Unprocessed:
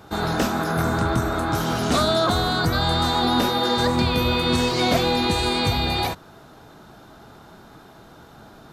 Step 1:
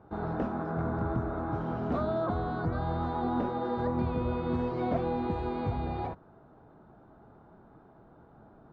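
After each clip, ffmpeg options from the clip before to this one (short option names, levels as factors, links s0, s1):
-af "lowpass=1000,volume=0.376"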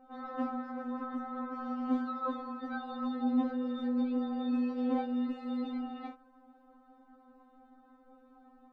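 -af "afftfilt=real='re*3.46*eq(mod(b,12),0)':imag='im*3.46*eq(mod(b,12),0)':win_size=2048:overlap=0.75"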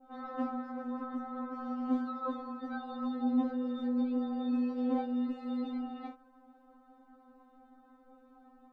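-af "adynamicequalizer=threshold=0.00251:dfrequency=2200:dqfactor=0.71:tfrequency=2200:tqfactor=0.71:attack=5:release=100:ratio=0.375:range=2:mode=cutabove:tftype=bell"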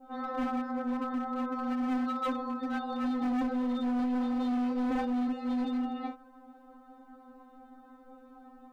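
-af "asoftclip=type=hard:threshold=0.0188,volume=2.11"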